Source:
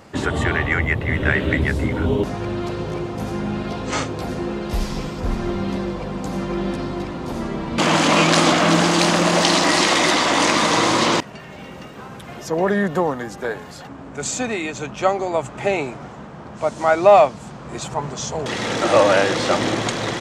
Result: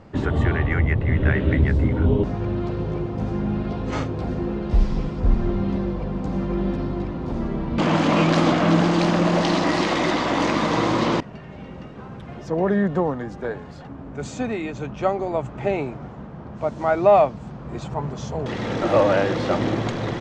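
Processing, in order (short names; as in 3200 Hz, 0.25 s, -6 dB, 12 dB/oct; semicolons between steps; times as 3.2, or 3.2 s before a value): LPF 6100 Hz 12 dB/oct; tilt -2.5 dB/oct; gain -5 dB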